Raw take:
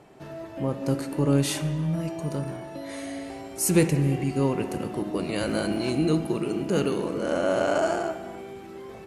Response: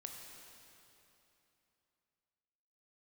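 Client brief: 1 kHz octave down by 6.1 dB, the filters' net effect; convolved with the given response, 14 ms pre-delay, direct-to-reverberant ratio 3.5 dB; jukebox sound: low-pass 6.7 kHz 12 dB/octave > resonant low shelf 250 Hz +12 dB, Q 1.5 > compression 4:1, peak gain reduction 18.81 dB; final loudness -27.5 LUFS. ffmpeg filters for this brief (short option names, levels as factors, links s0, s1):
-filter_complex "[0:a]equalizer=f=1000:t=o:g=-8,asplit=2[s0][s1];[1:a]atrim=start_sample=2205,adelay=14[s2];[s1][s2]afir=irnorm=-1:irlink=0,volume=1[s3];[s0][s3]amix=inputs=2:normalize=0,lowpass=6700,lowshelf=f=250:t=q:w=1.5:g=12,acompressor=threshold=0.0501:ratio=4,volume=1.12"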